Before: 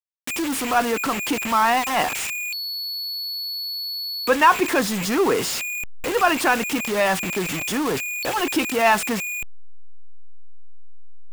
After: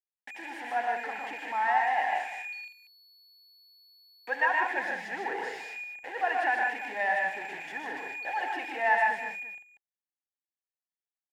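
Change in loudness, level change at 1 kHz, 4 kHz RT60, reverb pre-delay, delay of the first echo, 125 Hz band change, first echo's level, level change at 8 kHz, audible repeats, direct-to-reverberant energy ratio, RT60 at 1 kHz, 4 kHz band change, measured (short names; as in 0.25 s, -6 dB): -8.5 dB, -7.0 dB, none, none, 74 ms, under -25 dB, -13.5 dB, under -25 dB, 5, none, none, -21.0 dB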